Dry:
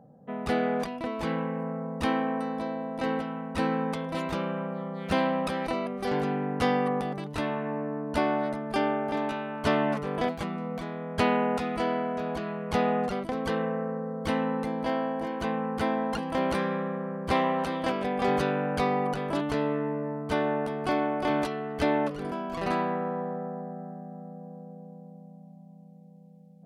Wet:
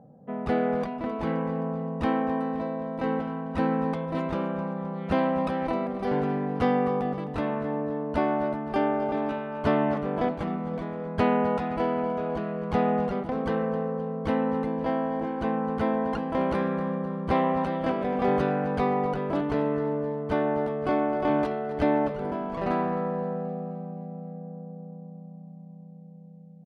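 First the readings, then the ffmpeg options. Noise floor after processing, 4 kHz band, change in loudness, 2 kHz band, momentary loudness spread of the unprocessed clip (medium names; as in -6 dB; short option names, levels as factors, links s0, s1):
-45 dBFS, -6.5 dB, +1.5 dB, -2.5 dB, 8 LU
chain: -af "lowpass=f=1200:p=1,aecho=1:1:261|522|783|1044|1305|1566:0.2|0.11|0.0604|0.0332|0.0183|0.01,volume=1.33"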